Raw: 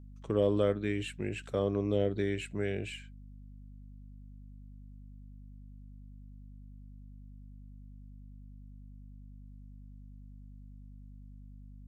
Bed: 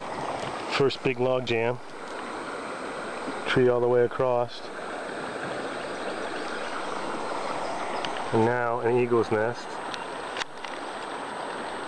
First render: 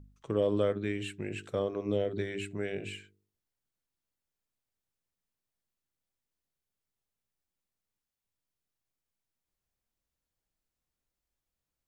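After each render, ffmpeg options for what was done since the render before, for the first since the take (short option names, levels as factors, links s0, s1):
-af "bandreject=f=50:t=h:w=4,bandreject=f=100:t=h:w=4,bandreject=f=150:t=h:w=4,bandreject=f=200:t=h:w=4,bandreject=f=250:t=h:w=4,bandreject=f=300:t=h:w=4,bandreject=f=350:t=h:w=4,bandreject=f=400:t=h:w=4,bandreject=f=450:t=h:w=4"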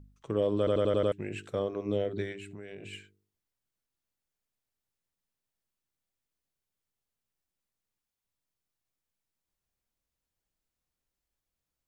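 -filter_complex "[0:a]asettb=1/sr,asplit=3[s0][s1][s2];[s0]atrim=end=2.324[s3];[s1]atrim=start=2.32:end=2.93,asetpts=PTS-STARTPTS,afade=t=in:d=0.004:c=qsin,afade=t=out:st=0.606:d=0.004:c=qsin,acompressor=threshold=0.01:ratio=6:attack=3.2:release=140:knee=1:detection=peak[s4];[s2]atrim=start=2.926[s5];[s3][s4]acrossfade=d=0.004:c1=hsin:c2=qsin[s6];[s6][s5]acrossfade=d=0.004:c1=qsin:c2=hsin,asplit=7[s7][s8][s9][s10][s11][s12][s13];[s7]atrim=end=0.672[s14];[s8]atrim=start=0.578:end=0.672[s15];[s9]atrim=start=0.578:end=0.672[s16];[s10]atrim=start=0.578:end=0.672[s17];[s11]atrim=start=0.578:end=0.672[s18];[s12]atrim=start=0.578:end=0.672[s19];[s13]atrim=start=1.118[s20];[s14][s15]acrossfade=d=0.004:c1=hsin:c2=hsin[s21];[s21][s16]acrossfade=d=0.004:c1=hsin:c2=hsin[s22];[s22][s17]acrossfade=d=0.004:c1=hsin:c2=hsin[s23];[s23][s18]acrossfade=d=0.004:c1=hsin:c2=hsin[s24];[s24][s19]acrossfade=d=0.004:c1=hsin:c2=hsin[s25];[s25][s20]acrossfade=d=0.004:c1=hsin:c2=hsin"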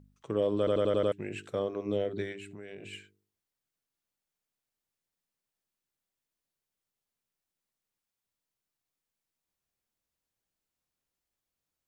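-af "lowshelf=f=70:g=-11"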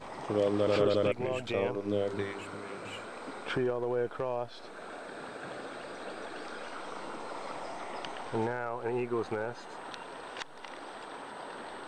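-filter_complex "[1:a]volume=0.335[s0];[0:a][s0]amix=inputs=2:normalize=0"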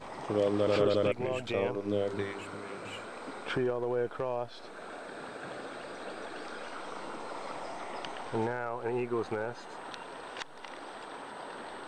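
-af anull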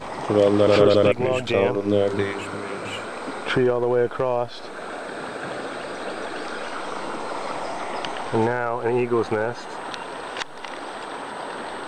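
-af "volume=3.55"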